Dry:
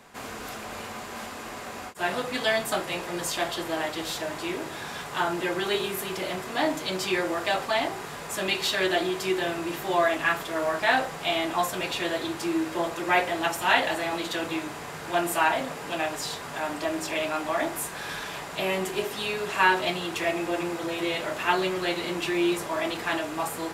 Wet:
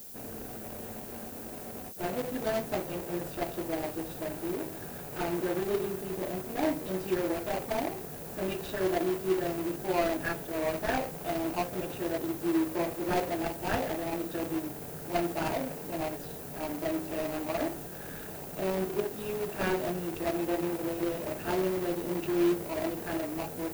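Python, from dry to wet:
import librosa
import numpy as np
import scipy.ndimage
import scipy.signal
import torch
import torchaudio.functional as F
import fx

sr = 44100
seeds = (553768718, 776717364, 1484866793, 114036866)

y = scipy.signal.medfilt(x, 41)
y = fx.dmg_noise_colour(y, sr, seeds[0], colour='violet', level_db=-46.0)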